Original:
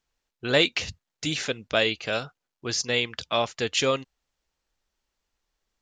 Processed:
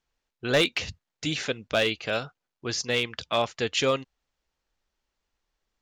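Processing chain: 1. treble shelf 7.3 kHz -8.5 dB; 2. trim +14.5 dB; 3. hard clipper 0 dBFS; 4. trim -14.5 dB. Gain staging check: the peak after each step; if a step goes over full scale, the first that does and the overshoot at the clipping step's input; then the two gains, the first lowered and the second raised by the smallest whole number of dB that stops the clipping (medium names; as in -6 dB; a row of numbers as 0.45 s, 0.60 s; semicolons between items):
-6.5 dBFS, +8.0 dBFS, 0.0 dBFS, -14.5 dBFS; step 2, 8.0 dB; step 2 +6.5 dB, step 4 -6.5 dB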